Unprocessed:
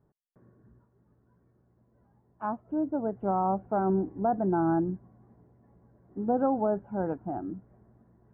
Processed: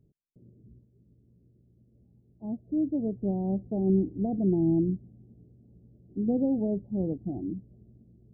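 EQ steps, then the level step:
Gaussian smoothing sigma 21 samples
+6.0 dB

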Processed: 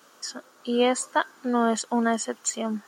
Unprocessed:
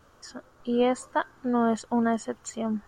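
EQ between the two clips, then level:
high-pass filter 200 Hz 24 dB per octave
high-shelf EQ 2,200 Hz +11.5 dB
+1.0 dB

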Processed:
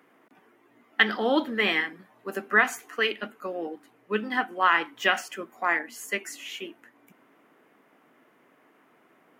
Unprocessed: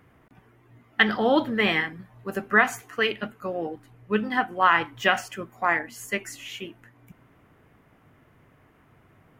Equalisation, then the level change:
high-pass filter 240 Hz 24 dB per octave
dynamic equaliser 700 Hz, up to −4 dB, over −34 dBFS, Q 0.84
0.0 dB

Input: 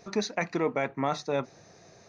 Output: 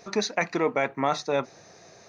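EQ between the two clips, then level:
low-shelf EQ 270 Hz −7.5 dB
+5.0 dB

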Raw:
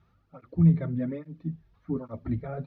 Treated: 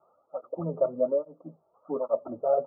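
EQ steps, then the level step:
high-pass with resonance 580 Hz, resonance Q 4.9
Butterworth low-pass 1,300 Hz 96 dB per octave
+4.5 dB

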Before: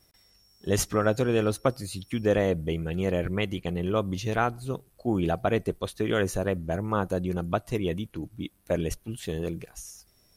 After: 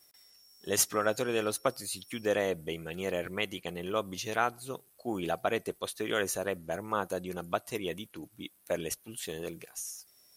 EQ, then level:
high-pass filter 570 Hz 6 dB per octave
high-shelf EQ 6,400 Hz +8 dB
−1.5 dB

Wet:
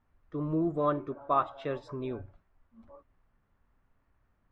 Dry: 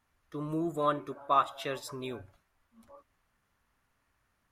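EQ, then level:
high-frequency loss of the air 120 metres
spectral tilt −4 dB per octave
low-shelf EQ 200 Hz −10 dB
0.0 dB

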